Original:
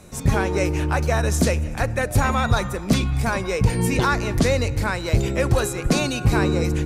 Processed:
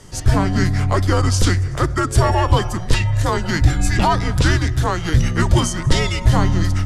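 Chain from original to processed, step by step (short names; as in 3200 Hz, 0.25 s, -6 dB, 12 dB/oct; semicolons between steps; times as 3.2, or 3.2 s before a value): formant shift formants -3 st; frequency shift -170 Hz; gain +4.5 dB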